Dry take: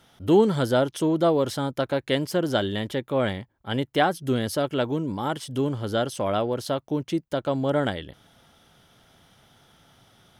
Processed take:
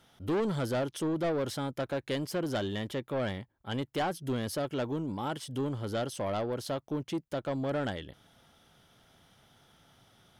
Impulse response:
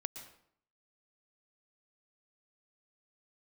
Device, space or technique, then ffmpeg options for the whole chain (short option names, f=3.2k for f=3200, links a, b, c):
saturation between pre-emphasis and de-emphasis: -af "highshelf=f=9k:g=7.5,asoftclip=type=tanh:threshold=-21dB,highshelf=f=9k:g=-7.5,volume=-5dB"